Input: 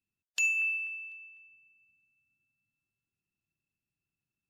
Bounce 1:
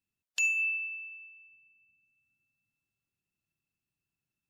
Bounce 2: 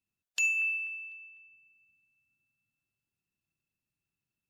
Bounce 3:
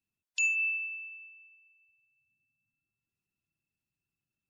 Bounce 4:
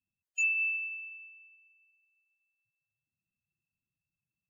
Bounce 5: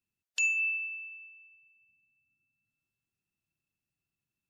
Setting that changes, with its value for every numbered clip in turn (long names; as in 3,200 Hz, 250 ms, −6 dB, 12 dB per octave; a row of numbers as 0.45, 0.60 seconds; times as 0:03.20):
gate on every frequency bin, under each frame's peak: −45, −60, −25, −10, −35 decibels